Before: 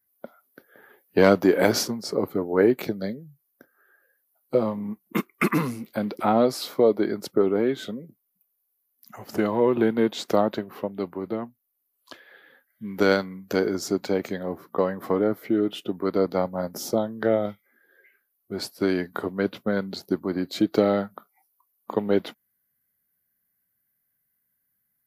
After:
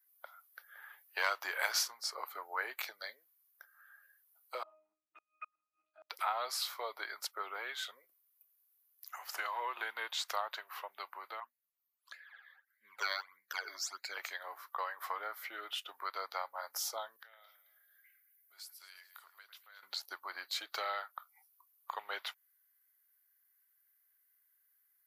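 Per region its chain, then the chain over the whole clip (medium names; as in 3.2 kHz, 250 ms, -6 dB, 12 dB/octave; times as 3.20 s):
4.63–6.10 s: peaking EQ 570 Hz +5 dB 0.34 oct + pitch-class resonator D#, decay 0.4 s + inverted gate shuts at -31 dBFS, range -36 dB
11.40–14.17 s: phase shifter stages 12, 1.6 Hz, lowest notch 140–1100 Hz + tape noise reduction on one side only decoder only
17.16–19.83 s: pre-emphasis filter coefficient 0.9 + compression 2.5:1, threshold -54 dBFS + echo whose repeats swap between lows and highs 109 ms, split 2.2 kHz, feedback 59%, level -10 dB
whole clip: high-pass 980 Hz 24 dB/octave; compression 1.5:1, threshold -43 dBFS; trim +1 dB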